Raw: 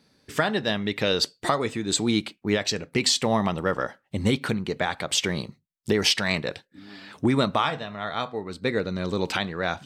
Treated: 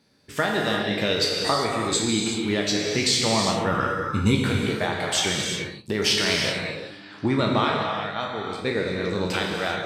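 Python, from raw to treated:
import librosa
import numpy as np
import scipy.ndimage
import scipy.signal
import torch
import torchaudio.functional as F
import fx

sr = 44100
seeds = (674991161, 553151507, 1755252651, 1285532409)

y = fx.spec_trails(x, sr, decay_s=0.36)
y = fx.comb(y, sr, ms=0.8, depth=0.94, at=(3.71, 4.35))
y = fx.level_steps(y, sr, step_db=11, at=(5.42, 5.96))
y = fx.lowpass(y, sr, hz=6300.0, slope=12, at=(6.91, 8.21))
y = fx.rev_gated(y, sr, seeds[0], gate_ms=410, shape='flat', drr_db=0.0)
y = y * librosa.db_to_amplitude(-2.5)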